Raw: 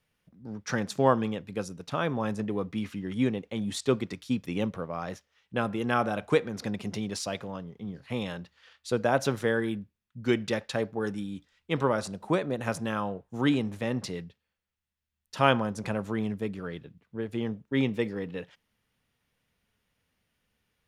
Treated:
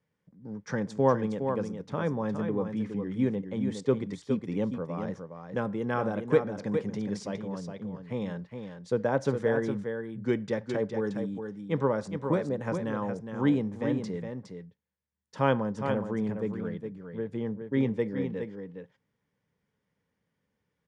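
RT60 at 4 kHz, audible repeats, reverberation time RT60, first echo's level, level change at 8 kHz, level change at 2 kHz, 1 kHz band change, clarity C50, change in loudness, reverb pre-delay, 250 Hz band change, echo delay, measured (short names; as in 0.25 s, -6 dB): none, 1, none, -7.0 dB, n/a, -5.0 dB, -3.5 dB, none, -0.5 dB, none, +0.5 dB, 0.413 s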